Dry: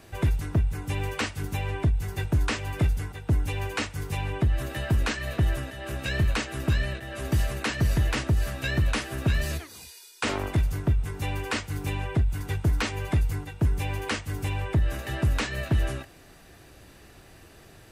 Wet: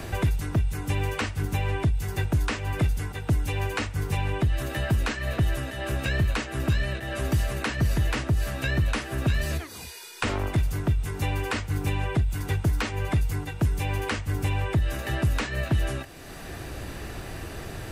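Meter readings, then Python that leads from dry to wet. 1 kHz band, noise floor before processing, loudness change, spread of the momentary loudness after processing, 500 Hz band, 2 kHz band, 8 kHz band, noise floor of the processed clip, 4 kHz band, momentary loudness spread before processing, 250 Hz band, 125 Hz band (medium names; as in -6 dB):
+2.0 dB, -51 dBFS, +0.5 dB, 11 LU, +1.5 dB, +1.0 dB, 0.0 dB, -39 dBFS, -0.5 dB, 5 LU, +1.0 dB, +1.0 dB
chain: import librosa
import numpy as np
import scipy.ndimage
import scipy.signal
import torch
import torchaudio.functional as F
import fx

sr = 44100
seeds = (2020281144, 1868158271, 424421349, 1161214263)

y = fx.band_squash(x, sr, depth_pct=70)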